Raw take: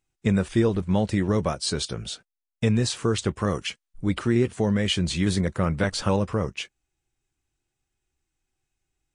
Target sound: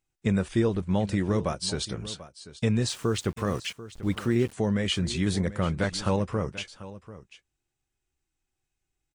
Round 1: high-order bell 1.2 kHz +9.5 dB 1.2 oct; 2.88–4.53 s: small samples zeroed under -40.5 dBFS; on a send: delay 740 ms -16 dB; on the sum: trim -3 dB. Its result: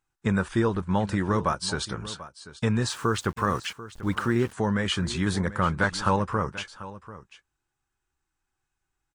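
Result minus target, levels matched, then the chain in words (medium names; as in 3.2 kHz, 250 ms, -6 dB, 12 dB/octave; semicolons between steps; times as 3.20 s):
1 kHz band +7.5 dB
2.88–4.53 s: small samples zeroed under -40.5 dBFS; on a send: delay 740 ms -16 dB; on the sum: trim -3 dB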